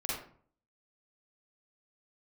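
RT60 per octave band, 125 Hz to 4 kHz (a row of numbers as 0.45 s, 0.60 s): 0.65 s, 0.60 s, 0.50 s, 0.50 s, 0.40 s, 0.30 s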